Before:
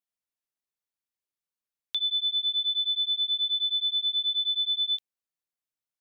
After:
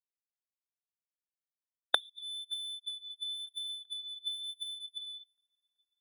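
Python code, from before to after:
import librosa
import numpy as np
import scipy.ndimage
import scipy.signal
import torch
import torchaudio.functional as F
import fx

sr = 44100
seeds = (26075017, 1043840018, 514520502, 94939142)

p1 = fx.spec_ripple(x, sr, per_octave=0.86, drift_hz=-3.0, depth_db=23)
p2 = fx.rev_gated(p1, sr, seeds[0], gate_ms=280, shape='flat', drr_db=-8.0)
p3 = fx.rotary_switch(p2, sr, hz=6.0, then_hz=1.0, switch_at_s=1.3)
p4 = fx.notch(p3, sr, hz=3500.0, q=25.0)
p5 = fx.fuzz(p4, sr, gain_db=49.0, gate_db=-55.0)
p6 = fx.volume_shaper(p5, sr, bpm=86, per_beat=2, depth_db=-17, release_ms=87.0, shape='slow start')
p7 = fx.gate_flip(p6, sr, shuts_db=-13.0, range_db=-32)
p8 = fx.peak_eq(p7, sr, hz=3300.0, db=-5.5, octaves=0.33)
p9 = p8 + fx.echo_swing(p8, sr, ms=954, ratio=1.5, feedback_pct=60, wet_db=-17.0, dry=0)
p10 = fx.spectral_expand(p9, sr, expansion=2.5)
y = p10 * librosa.db_to_amplitude(5.5)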